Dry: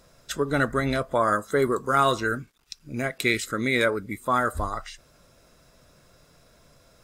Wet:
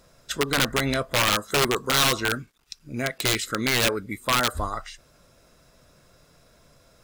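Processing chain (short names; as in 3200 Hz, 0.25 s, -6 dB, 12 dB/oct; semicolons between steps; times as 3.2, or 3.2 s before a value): wrapped overs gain 15.5 dB; dynamic EQ 3400 Hz, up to +4 dB, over -38 dBFS, Q 0.87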